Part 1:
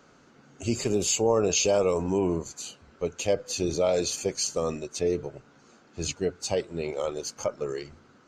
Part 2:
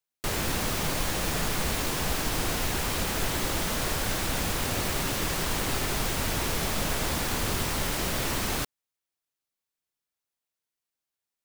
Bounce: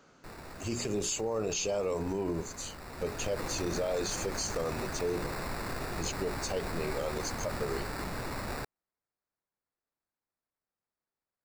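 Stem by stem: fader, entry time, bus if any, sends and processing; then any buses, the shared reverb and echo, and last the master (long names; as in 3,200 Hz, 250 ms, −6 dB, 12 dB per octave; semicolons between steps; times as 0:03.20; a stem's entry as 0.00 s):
−3.0 dB, 0.00 s, no send, mains-hum notches 60/120/180/240/300/360/420 Hz
0:02.77 −18 dB → 0:03.35 −8 dB, 0.00 s, no send, decimation without filtering 14×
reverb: not used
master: brickwall limiter −23.5 dBFS, peak gain reduction 9 dB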